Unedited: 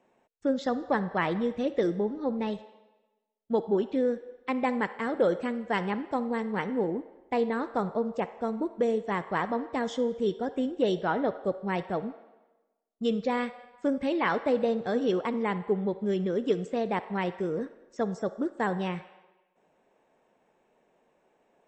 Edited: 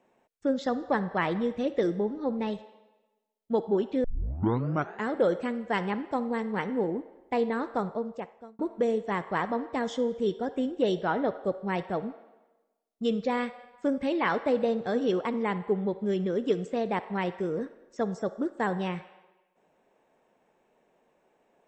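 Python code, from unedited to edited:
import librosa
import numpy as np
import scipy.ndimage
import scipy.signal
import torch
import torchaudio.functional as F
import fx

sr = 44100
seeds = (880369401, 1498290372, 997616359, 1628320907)

y = fx.edit(x, sr, fx.tape_start(start_s=4.04, length_s=1.04),
    fx.fade_out_span(start_s=7.73, length_s=0.86), tone=tone)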